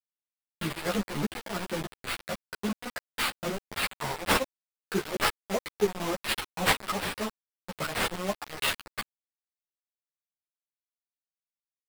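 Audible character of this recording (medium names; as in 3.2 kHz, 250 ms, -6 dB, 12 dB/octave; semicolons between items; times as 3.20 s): aliases and images of a low sample rate 6.5 kHz, jitter 20%; chopped level 3.5 Hz, depth 60%, duty 50%; a quantiser's noise floor 6-bit, dither none; a shimmering, thickened sound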